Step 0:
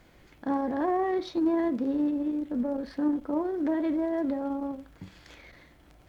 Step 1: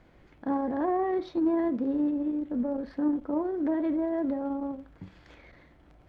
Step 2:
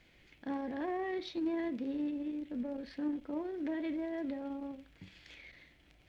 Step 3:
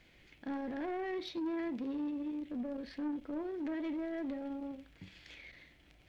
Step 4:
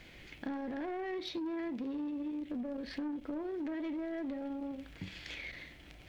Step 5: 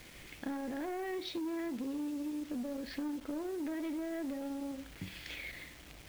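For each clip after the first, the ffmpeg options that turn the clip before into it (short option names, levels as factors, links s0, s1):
-af "lowpass=f=1700:p=1"
-af "highshelf=f=1700:t=q:w=1.5:g=12,volume=0.376"
-af "asoftclip=type=tanh:threshold=0.0224,volume=1.12"
-af "acompressor=threshold=0.00501:ratio=6,volume=2.82"
-af "acrusher=bits=8:mix=0:aa=0.000001"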